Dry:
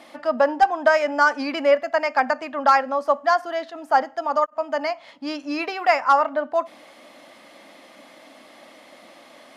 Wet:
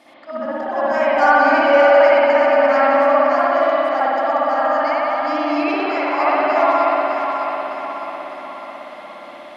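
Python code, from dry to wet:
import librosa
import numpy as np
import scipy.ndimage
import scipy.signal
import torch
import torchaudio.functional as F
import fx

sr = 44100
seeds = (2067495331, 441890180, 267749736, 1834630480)

y = fx.reverse_delay_fb(x, sr, ms=303, feedback_pct=72, wet_db=-5.5)
y = fx.auto_swell(y, sr, attack_ms=127.0)
y = fx.rev_spring(y, sr, rt60_s=2.6, pass_ms=(58,), chirp_ms=40, drr_db=-10.0)
y = F.gain(torch.from_numpy(y), -5.0).numpy()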